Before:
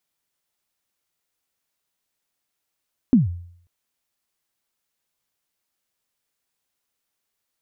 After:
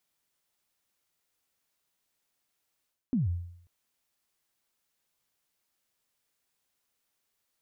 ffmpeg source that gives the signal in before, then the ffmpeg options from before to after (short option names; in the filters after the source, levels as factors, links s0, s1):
-f lavfi -i "aevalsrc='0.398*pow(10,-3*t/0.62)*sin(2*PI*(280*0.149/log(87/280)*(exp(log(87/280)*min(t,0.149)/0.149)-1)+87*max(t-0.149,0)))':d=0.54:s=44100"
-af "areverse,acompressor=threshold=0.0398:ratio=6,areverse"